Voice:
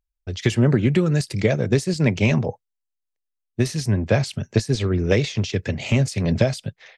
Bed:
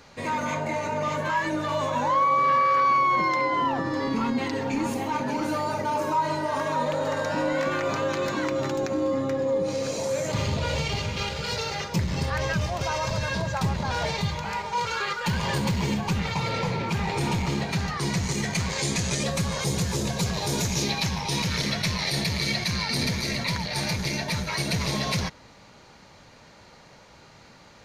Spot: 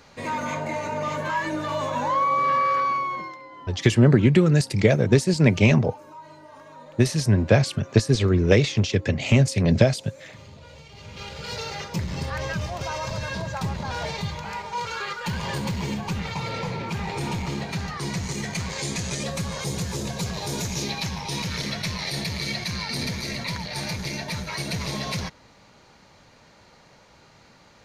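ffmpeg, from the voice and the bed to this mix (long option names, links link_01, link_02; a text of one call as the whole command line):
ffmpeg -i stem1.wav -i stem2.wav -filter_complex "[0:a]adelay=3400,volume=1.5dB[link_01];[1:a]volume=16dB,afade=type=out:start_time=2.69:duration=0.69:silence=0.11885,afade=type=in:start_time=10.93:duration=0.68:silence=0.149624[link_02];[link_01][link_02]amix=inputs=2:normalize=0" out.wav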